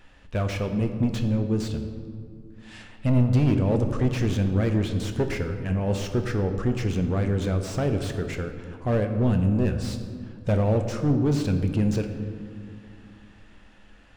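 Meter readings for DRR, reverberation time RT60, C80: 5.5 dB, 2.3 s, 9.5 dB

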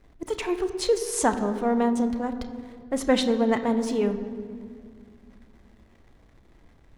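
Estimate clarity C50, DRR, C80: 10.5 dB, 8.0 dB, 11.5 dB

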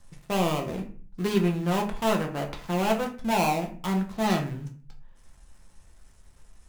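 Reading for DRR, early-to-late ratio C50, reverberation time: 1.5 dB, 10.0 dB, 0.45 s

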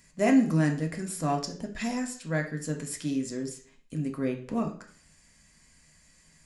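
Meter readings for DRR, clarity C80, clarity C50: 2.0 dB, 14.5 dB, 10.0 dB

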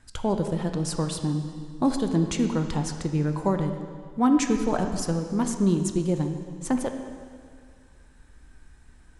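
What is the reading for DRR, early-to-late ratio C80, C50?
5.0 dB, 7.5 dB, 6.5 dB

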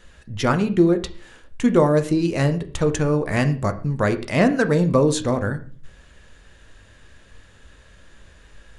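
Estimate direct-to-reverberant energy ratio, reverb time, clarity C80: 8.0 dB, 0.40 s, 18.0 dB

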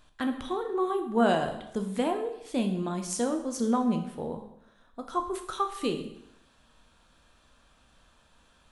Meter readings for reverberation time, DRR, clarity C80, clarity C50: 0.80 s, 5.0 dB, 11.5 dB, 9.0 dB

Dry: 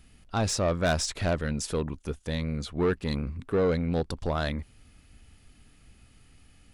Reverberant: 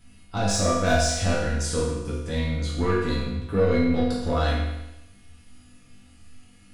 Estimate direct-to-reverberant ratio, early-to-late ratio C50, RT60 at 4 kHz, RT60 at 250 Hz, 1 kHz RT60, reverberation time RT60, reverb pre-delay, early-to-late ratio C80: −7.5 dB, 0.5 dB, 0.95 s, 1.0 s, 0.95 s, 0.95 s, 4 ms, 3.5 dB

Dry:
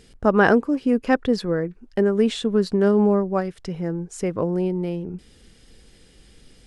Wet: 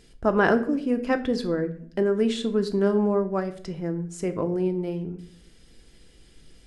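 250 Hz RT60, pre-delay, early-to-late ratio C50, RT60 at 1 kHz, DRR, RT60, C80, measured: 0.85 s, 3 ms, 14.0 dB, 0.50 s, 7.0 dB, 0.60 s, 17.0 dB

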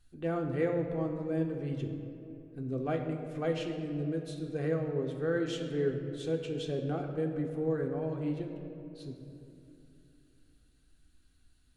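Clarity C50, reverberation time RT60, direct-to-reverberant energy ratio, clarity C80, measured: 5.5 dB, 2.8 s, 1.5 dB, 7.0 dB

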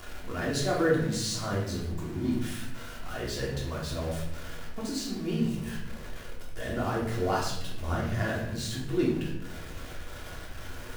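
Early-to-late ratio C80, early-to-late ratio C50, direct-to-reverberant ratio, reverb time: 6.5 dB, 3.5 dB, −5.0 dB, 0.85 s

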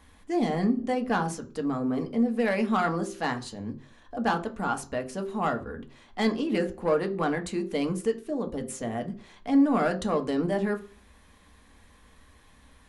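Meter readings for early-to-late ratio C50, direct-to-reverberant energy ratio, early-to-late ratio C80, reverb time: 15.0 dB, 4.5 dB, 19.0 dB, 0.45 s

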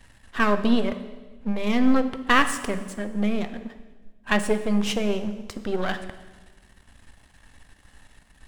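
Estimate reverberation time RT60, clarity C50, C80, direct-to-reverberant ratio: 1.3 s, 11.5 dB, 13.0 dB, 9.0 dB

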